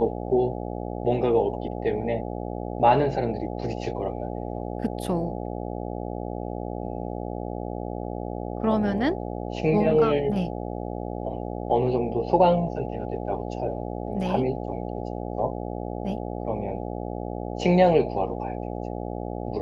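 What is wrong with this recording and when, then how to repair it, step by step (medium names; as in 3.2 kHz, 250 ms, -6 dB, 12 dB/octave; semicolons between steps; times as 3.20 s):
buzz 60 Hz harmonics 14 -32 dBFS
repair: de-hum 60 Hz, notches 14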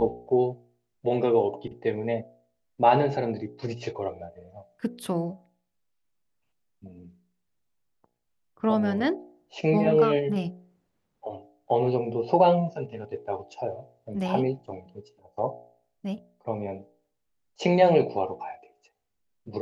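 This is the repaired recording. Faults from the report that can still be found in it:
nothing left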